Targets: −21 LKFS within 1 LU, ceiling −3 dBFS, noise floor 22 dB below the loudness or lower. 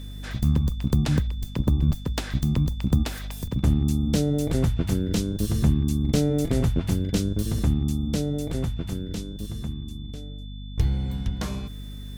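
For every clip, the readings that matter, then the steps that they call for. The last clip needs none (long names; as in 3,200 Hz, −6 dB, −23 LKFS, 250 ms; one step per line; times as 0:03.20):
mains hum 50 Hz; hum harmonics up to 250 Hz; level of the hum −33 dBFS; interfering tone 3,500 Hz; level of the tone −48 dBFS; integrated loudness −25.5 LKFS; sample peak −10.0 dBFS; target loudness −21.0 LKFS
→ hum removal 50 Hz, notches 5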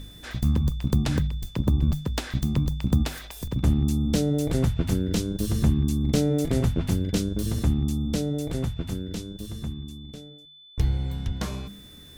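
mains hum none found; interfering tone 3,500 Hz; level of the tone −48 dBFS
→ notch filter 3,500 Hz, Q 30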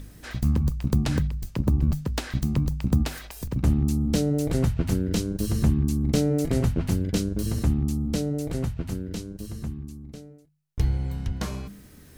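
interfering tone none found; integrated loudness −26.0 LKFS; sample peak −11.0 dBFS; target loudness −21.0 LKFS
→ level +5 dB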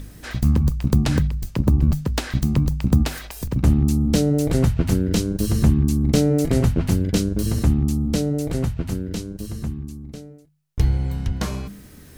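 integrated loudness −21.0 LKFS; sample peak −6.0 dBFS; background noise floor −44 dBFS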